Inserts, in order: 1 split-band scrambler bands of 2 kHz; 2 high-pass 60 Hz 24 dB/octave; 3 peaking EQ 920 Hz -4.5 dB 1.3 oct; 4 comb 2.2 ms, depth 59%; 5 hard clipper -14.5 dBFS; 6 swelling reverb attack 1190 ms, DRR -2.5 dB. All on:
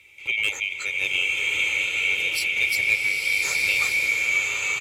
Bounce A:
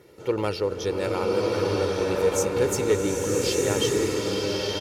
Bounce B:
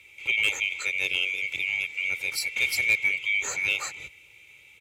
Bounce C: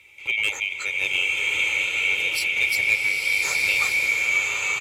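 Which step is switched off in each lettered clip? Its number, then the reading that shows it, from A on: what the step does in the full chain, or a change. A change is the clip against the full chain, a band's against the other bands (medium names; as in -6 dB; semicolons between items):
1, 500 Hz band +23.0 dB; 6, momentary loudness spread change +1 LU; 3, 1 kHz band +3.0 dB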